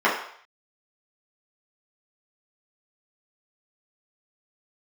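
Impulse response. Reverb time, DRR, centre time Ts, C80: 0.60 s, -7.0 dB, 35 ms, 9.0 dB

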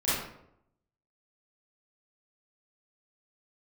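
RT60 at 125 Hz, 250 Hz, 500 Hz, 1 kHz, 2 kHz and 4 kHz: 0.90, 0.85, 0.80, 0.70, 0.55, 0.45 s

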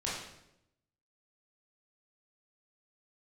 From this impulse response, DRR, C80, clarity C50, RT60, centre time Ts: -7.0 dB, 4.5 dB, 1.0 dB, 0.85 s, 61 ms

